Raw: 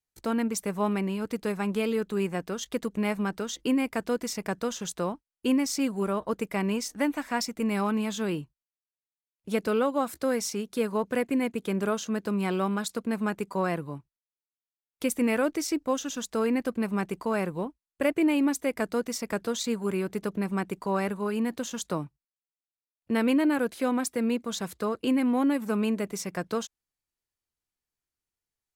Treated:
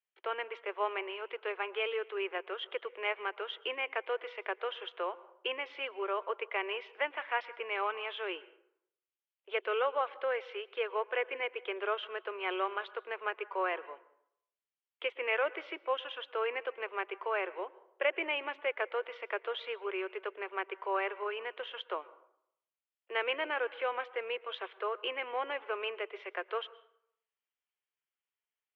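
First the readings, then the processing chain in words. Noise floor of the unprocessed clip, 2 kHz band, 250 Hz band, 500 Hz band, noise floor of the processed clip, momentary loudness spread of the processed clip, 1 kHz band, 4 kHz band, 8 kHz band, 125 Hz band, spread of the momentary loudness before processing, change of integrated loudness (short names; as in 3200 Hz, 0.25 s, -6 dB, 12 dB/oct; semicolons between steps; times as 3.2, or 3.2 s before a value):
under -85 dBFS, +0.5 dB, -25.0 dB, -5.5 dB, under -85 dBFS, 7 LU, -2.5 dB, -2.0 dB, under -40 dB, under -40 dB, 7 LU, -7.0 dB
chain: Chebyshev band-pass 370–3200 Hz, order 5; tilt +3 dB/oct; plate-style reverb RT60 0.73 s, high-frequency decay 0.6×, pre-delay 0.105 s, DRR 19 dB; gain -2 dB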